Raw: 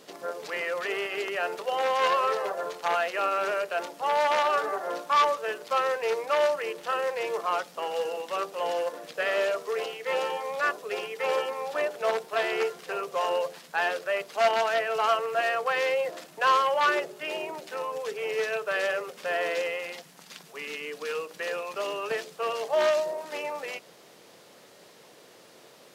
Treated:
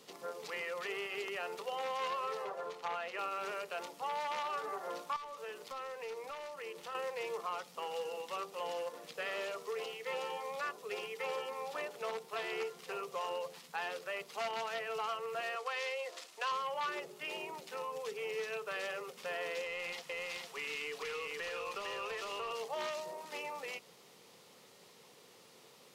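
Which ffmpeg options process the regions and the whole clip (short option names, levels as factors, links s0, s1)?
-filter_complex "[0:a]asettb=1/sr,asplit=3[s0][s1][s2];[s0]atrim=end=2.444[s3];[s1]atrim=start=2.44:end=3.19,asetpts=PTS-STARTPTS,afade=t=in:d=0.004:c=qsin,afade=t=out:st=0.746:d=0.004:c=qsin,highshelf=f=5800:g=-11.5,bandreject=f=60:t=h:w=6,bandreject=f=120:t=h:w=6,bandreject=f=180:t=h:w=6,bandreject=f=240:t=h:w=6,bandreject=f=300:t=h:w=6,bandreject=f=360:t=h:w=6,bandreject=f=420:t=h:w=6[s4];[s2]atrim=start=3.186[s5];[s3][s4]acrossfade=d=0.004:c1=hsin:c2=qsin[s6];[s6][s5]acrossfade=d=0.004:c1=qsin:c2=hsin,asettb=1/sr,asplit=3[s7][s8][s9];[s7]atrim=end=5.164[s10];[s8]atrim=start=5.16:end=6.95,asetpts=PTS-STARTPTS,afade=t=in:d=0.004:c=qsin,afade=t=out:st=1.786:d=0.004:c=qsin,acompressor=threshold=0.0178:ratio=3:attack=3.2:release=140:knee=1:detection=peak,volume=31.6,asoftclip=hard,volume=0.0316[s11];[s9]atrim=start=6.946[s12];[s10][s11]acrossfade=d=0.004:c1=hsin:c2=qsin[s13];[s13][s12]acrossfade=d=0.004:c1=qsin:c2=hsin,asettb=1/sr,asplit=3[s14][s15][s16];[s14]atrim=end=15.554[s17];[s15]atrim=start=15.55:end=16.52,asetpts=PTS-STARTPTS,afade=t=in:d=0.004:c=qsin,afade=t=out:st=0.966:d=0.004:c=qsin,highpass=360,lowpass=5800,aemphasis=mode=production:type=bsi,bandreject=f=840:w=11[s18];[s16]atrim=start=16.516[s19];[s17][s18]acrossfade=d=0.004:c1=hsin:c2=qsin[s20];[s20][s19]acrossfade=d=0.004:c1=qsin:c2=hsin,asettb=1/sr,asplit=3[s21][s22][s23];[s21]atrim=end=19.644[s24];[s22]atrim=start=19.64:end=22.51,asetpts=PTS-STARTPTS,afade=t=in:d=0.004:c=qsin,afade=t=out:st=2.866:d=0.004:c=qsin,aecho=1:1:453:0.668,atrim=end_sample=126567,acompressor=threshold=0.0282:ratio=6:attack=3.2:release=140:knee=1:detection=peak,asplit=2[s25][s26];[s26]highpass=f=720:p=1,volume=3.98,asoftclip=type=tanh:threshold=0.075[s27];[s25][s27]amix=inputs=2:normalize=0,lowpass=f=4800:p=1,volume=0.501[s28];[s23]atrim=start=22.506[s29];[s24][s28]acrossfade=d=0.004:c1=hsin:c2=qsin[s30];[s30][s29]acrossfade=d=0.004:c1=qsin:c2=hsin,equalizer=f=315:t=o:w=0.33:g=-7,equalizer=f=630:t=o:w=0.33:g=-9,equalizer=f=1600:t=o:w=0.33:g=-7,acrossover=split=160[s31][s32];[s32]acompressor=threshold=0.0251:ratio=2.5[s33];[s31][s33]amix=inputs=2:normalize=0,volume=0.562"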